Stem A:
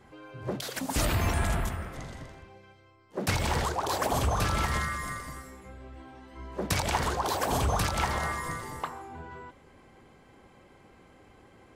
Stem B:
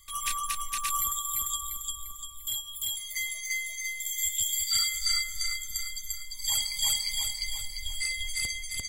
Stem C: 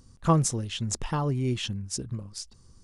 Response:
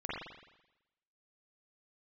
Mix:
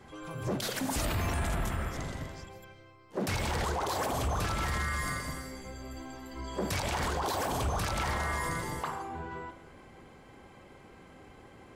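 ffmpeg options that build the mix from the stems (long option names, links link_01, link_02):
-filter_complex "[0:a]volume=1.5dB,asplit=2[link_01][link_02];[link_02]volume=-12dB[link_03];[1:a]volume=-17dB,asplit=3[link_04][link_05][link_06];[link_04]atrim=end=2.49,asetpts=PTS-STARTPTS,afade=type=out:start_time=2.486:duration=0.004:curve=hsin[link_07];[link_05]atrim=start=2.49:end=3.6,asetpts=PTS-STARTPTS,volume=0[link_08];[link_06]atrim=start=3.6,asetpts=PTS-STARTPTS,afade=type=in:duration=0.004:curve=hsin[link_09];[link_07][link_08][link_09]concat=n=3:v=0:a=1,asplit=2[link_10][link_11];[link_11]volume=-8dB[link_12];[2:a]volume=-13dB,asplit=2[link_13][link_14];[link_14]volume=-18dB[link_15];[link_10][link_13]amix=inputs=2:normalize=0,lowpass=frequency=6700:width=0.5412,lowpass=frequency=6700:width=1.3066,acompressor=threshold=-53dB:ratio=2,volume=0dB[link_16];[3:a]atrim=start_sample=2205[link_17];[link_03][link_17]afir=irnorm=-1:irlink=0[link_18];[link_12][link_15]amix=inputs=2:normalize=0,aecho=0:1:155:1[link_19];[link_01][link_16][link_18][link_19]amix=inputs=4:normalize=0,alimiter=limit=-23.5dB:level=0:latency=1:release=32"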